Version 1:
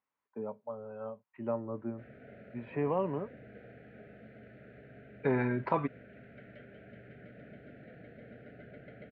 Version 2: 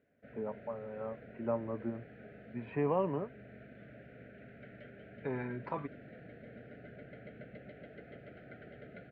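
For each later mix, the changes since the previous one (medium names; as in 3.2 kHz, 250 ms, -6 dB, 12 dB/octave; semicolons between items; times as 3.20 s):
second voice -8.5 dB; background: entry -1.75 s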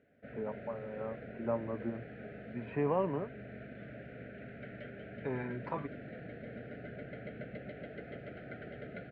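background +5.5 dB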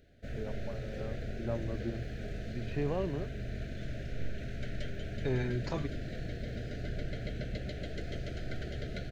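first voice -5.0 dB; master: remove cabinet simulation 210–2200 Hz, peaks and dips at 350 Hz -7 dB, 670 Hz -3 dB, 980 Hz +8 dB, 1.7 kHz -3 dB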